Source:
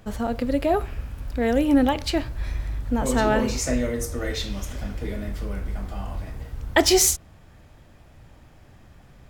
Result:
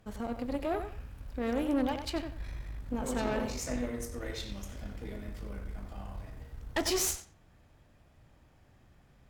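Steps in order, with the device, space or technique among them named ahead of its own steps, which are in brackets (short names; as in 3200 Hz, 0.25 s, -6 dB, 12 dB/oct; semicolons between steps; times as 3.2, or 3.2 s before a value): rockabilly slapback (tube stage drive 17 dB, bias 0.7; tape echo 93 ms, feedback 23%, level -7 dB, low-pass 3500 Hz); gain -7.5 dB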